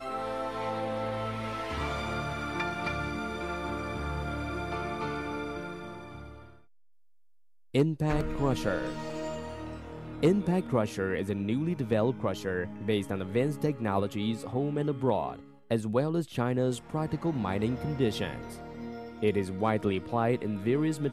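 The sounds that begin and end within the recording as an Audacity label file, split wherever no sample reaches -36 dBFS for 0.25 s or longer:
7.750000	15.390000	sound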